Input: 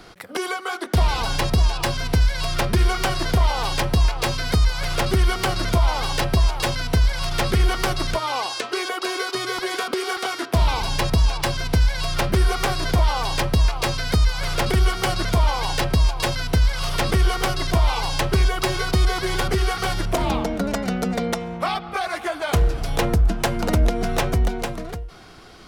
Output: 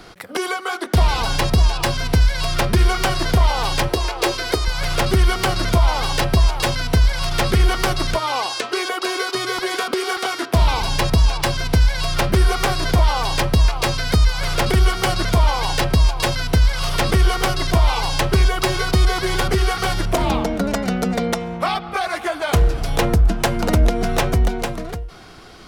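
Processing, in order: 3.88–4.68 s: resonant low shelf 260 Hz -9 dB, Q 3; trim +3 dB

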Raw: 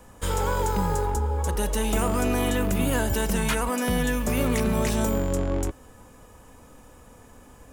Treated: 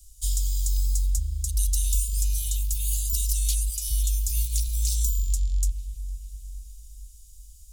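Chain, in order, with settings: inverse Chebyshev band-stop 140–1800 Hz, stop band 50 dB; feedback echo behind a low-pass 457 ms, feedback 53%, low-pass 2.2 kHz, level -10.5 dB; trim +5.5 dB

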